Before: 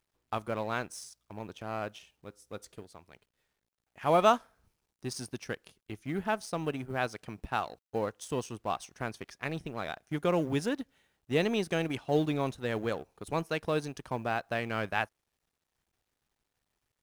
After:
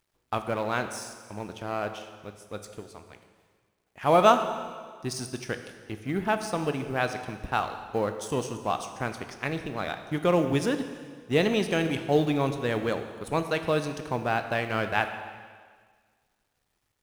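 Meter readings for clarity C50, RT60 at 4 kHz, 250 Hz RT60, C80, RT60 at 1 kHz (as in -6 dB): 9.0 dB, 1.6 s, 1.7 s, 10.0 dB, 1.7 s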